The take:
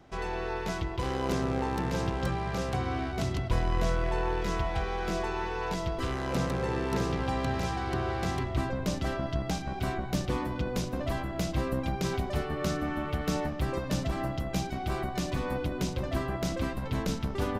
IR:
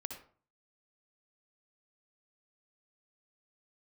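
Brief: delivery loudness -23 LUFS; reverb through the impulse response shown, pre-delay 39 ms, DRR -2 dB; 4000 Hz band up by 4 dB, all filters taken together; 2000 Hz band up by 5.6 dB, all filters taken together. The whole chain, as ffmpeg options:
-filter_complex "[0:a]equalizer=f=2k:t=o:g=6.5,equalizer=f=4k:t=o:g=3,asplit=2[a][b];[1:a]atrim=start_sample=2205,adelay=39[c];[b][c]afir=irnorm=-1:irlink=0,volume=3.5dB[d];[a][d]amix=inputs=2:normalize=0,volume=4dB"

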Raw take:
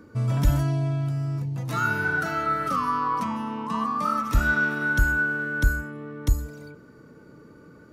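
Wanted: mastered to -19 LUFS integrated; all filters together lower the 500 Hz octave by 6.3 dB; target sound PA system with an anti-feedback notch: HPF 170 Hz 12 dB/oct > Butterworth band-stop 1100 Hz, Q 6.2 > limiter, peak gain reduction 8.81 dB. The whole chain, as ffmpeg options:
-af "highpass=170,asuperstop=centerf=1100:order=8:qfactor=6.2,equalizer=f=500:t=o:g=-8.5,volume=12dB,alimiter=limit=-11dB:level=0:latency=1"

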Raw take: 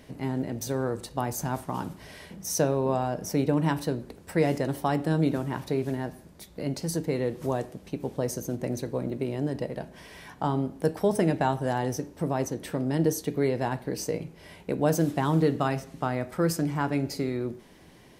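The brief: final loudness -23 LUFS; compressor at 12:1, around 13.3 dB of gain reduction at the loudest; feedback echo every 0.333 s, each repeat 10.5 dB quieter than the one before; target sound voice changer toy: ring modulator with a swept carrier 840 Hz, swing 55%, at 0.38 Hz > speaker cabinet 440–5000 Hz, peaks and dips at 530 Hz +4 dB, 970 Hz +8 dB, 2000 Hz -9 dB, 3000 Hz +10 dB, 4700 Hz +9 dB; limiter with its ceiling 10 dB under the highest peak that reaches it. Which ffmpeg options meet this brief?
-af "acompressor=threshold=-32dB:ratio=12,alimiter=level_in=4.5dB:limit=-24dB:level=0:latency=1,volume=-4.5dB,aecho=1:1:333|666|999:0.299|0.0896|0.0269,aeval=exprs='val(0)*sin(2*PI*840*n/s+840*0.55/0.38*sin(2*PI*0.38*n/s))':c=same,highpass=440,equalizer=f=530:t=q:w=4:g=4,equalizer=f=970:t=q:w=4:g=8,equalizer=f=2k:t=q:w=4:g=-9,equalizer=f=3k:t=q:w=4:g=10,equalizer=f=4.7k:t=q:w=4:g=9,lowpass=f=5k:w=0.5412,lowpass=f=5k:w=1.3066,volume=17dB"

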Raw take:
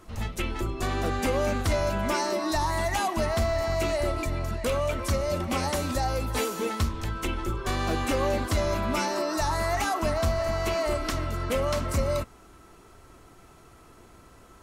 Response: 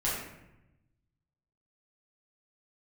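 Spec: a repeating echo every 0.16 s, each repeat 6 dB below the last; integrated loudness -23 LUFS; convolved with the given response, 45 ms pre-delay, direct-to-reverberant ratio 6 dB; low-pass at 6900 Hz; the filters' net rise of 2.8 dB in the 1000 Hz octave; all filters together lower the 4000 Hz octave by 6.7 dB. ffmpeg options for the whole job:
-filter_complex "[0:a]lowpass=6.9k,equalizer=f=1k:t=o:g=4,equalizer=f=4k:t=o:g=-8.5,aecho=1:1:160|320|480|640|800|960:0.501|0.251|0.125|0.0626|0.0313|0.0157,asplit=2[a][b];[1:a]atrim=start_sample=2205,adelay=45[c];[b][c]afir=irnorm=-1:irlink=0,volume=-14dB[d];[a][d]amix=inputs=2:normalize=0,volume=2dB"

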